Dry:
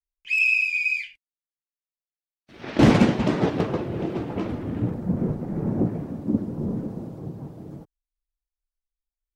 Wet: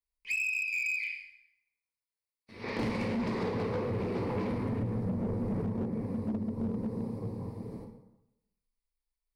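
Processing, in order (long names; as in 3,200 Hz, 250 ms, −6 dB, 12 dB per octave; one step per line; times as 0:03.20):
EQ curve with evenly spaced ripples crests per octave 0.91, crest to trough 11 dB
dense smooth reverb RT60 0.9 s, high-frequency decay 0.75×, DRR 1.5 dB
dynamic equaliser 2,700 Hz, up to +4 dB, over −29 dBFS, Q 1.4
downward compressor 8 to 1, threshold −24 dBFS, peak gain reduction 16.5 dB
gain into a clipping stage and back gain 23 dB
0:03.10–0:05.62: leveller curve on the samples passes 1
level −4.5 dB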